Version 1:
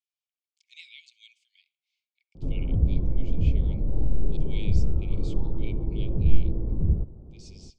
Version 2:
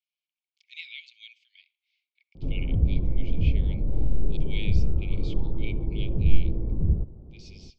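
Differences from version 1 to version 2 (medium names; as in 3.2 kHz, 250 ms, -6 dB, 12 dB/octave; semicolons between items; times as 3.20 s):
speech +10.5 dB; master: add distance through air 220 m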